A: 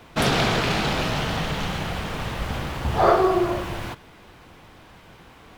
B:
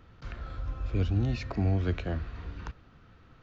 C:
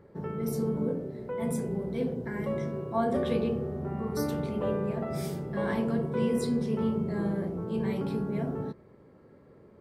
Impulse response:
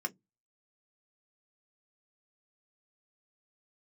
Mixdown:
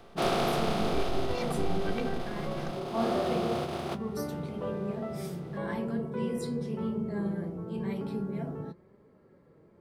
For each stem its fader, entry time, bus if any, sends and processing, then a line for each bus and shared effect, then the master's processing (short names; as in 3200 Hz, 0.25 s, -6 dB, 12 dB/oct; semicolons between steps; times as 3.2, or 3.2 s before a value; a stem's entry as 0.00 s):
-12.0 dB, 0.00 s, send -15 dB, per-bin compression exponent 0.2; HPF 190 Hz 12 dB/oct; gate -14 dBFS, range -25 dB; auto duck -7 dB, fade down 1.25 s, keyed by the second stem
+1.0 dB, 0.00 s, no send, robotiser 389 Hz
0.0 dB, 0.00 s, no send, flange 0.99 Hz, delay 4.5 ms, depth 1.9 ms, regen +59%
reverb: on, RT60 0.15 s, pre-delay 3 ms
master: dry